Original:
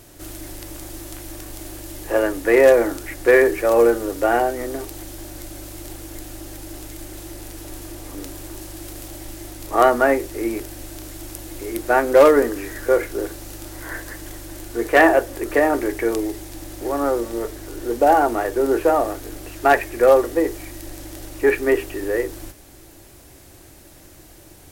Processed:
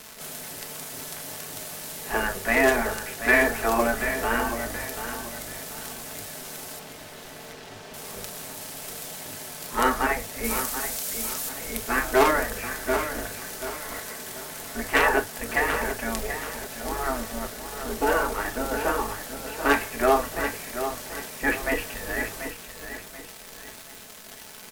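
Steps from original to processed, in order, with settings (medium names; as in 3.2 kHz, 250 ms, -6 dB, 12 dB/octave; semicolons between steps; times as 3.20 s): 10.44–11.49 s: treble shelf 4 kHz +11 dB; spectral gate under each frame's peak -10 dB weak; crackle 280 per s -29 dBFS; 6.79–7.94 s: distance through air 130 m; feedback delay 734 ms, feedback 35%, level -9.5 dB; reverberation, pre-delay 5 ms, DRR 6 dB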